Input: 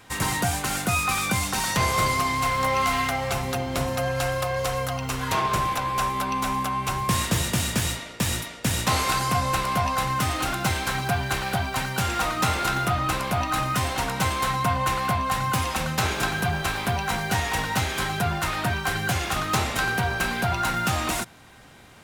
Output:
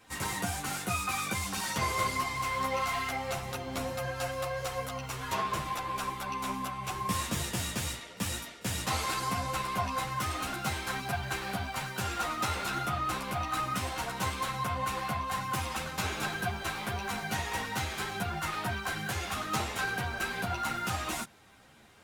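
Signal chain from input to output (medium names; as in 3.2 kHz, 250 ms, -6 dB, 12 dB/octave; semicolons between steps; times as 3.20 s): bass shelf 63 Hz -6.5 dB; reverse echo 33 ms -23.5 dB; three-phase chorus; trim -5 dB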